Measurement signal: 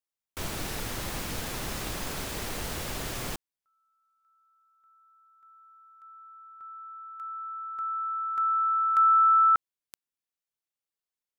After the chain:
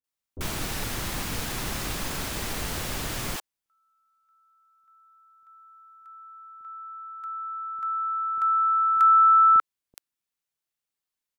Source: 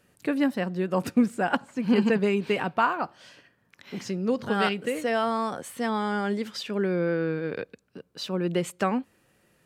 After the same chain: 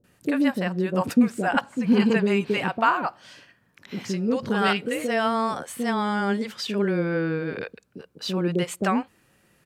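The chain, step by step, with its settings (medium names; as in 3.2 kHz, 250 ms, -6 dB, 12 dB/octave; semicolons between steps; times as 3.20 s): bands offset in time lows, highs 40 ms, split 520 Hz; trim +3.5 dB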